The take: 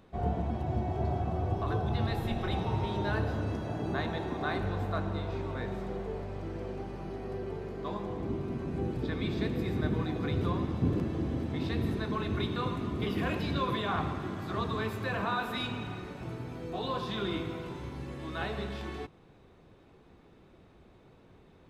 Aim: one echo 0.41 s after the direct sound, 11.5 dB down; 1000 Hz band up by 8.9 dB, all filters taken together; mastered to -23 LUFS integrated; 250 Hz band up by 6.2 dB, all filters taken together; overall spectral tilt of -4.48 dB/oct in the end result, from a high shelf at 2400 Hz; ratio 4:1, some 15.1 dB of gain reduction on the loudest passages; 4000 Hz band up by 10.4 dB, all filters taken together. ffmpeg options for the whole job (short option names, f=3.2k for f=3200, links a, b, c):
-af "equalizer=f=250:t=o:g=7.5,equalizer=f=1k:t=o:g=9,highshelf=f=2.4k:g=8.5,equalizer=f=4k:t=o:g=4.5,acompressor=threshold=-37dB:ratio=4,aecho=1:1:410:0.266,volume=15.5dB"